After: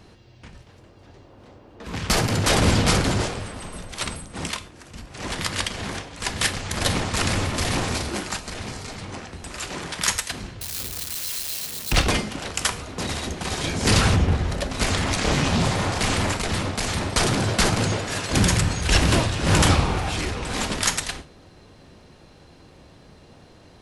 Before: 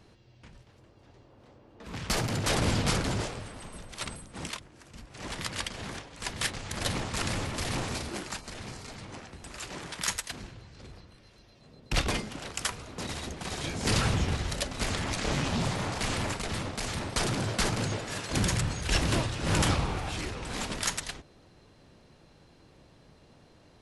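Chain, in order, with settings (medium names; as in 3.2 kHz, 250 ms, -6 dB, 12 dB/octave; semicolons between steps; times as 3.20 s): 10.61–11.92 s: zero-crossing glitches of -27 dBFS; 14.16–14.70 s: treble shelf 2.3 kHz -11 dB; gated-style reverb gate 160 ms falling, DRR 11 dB; trim +8 dB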